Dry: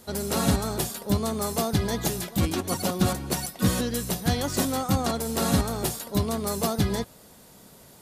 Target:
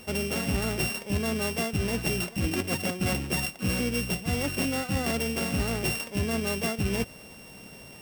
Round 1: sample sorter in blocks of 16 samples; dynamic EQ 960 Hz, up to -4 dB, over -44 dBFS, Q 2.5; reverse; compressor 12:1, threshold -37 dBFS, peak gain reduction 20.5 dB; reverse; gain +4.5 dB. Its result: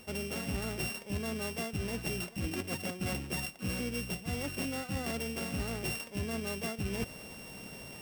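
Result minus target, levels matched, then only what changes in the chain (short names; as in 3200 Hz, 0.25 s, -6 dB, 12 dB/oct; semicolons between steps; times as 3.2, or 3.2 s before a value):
compressor: peak gain reduction +8 dB
change: compressor 12:1, threshold -28.5 dBFS, peak gain reduction 12.5 dB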